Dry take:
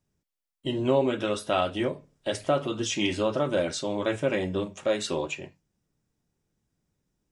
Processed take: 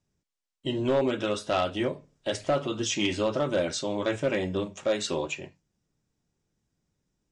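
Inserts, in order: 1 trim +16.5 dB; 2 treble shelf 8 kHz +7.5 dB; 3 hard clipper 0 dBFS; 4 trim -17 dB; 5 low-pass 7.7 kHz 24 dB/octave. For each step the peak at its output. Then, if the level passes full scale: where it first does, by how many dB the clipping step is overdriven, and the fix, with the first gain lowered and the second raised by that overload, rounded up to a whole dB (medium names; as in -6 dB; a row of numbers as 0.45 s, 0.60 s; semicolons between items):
+7.0 dBFS, +7.0 dBFS, 0.0 dBFS, -17.0 dBFS, -16.0 dBFS; step 1, 7.0 dB; step 1 +9.5 dB, step 4 -10 dB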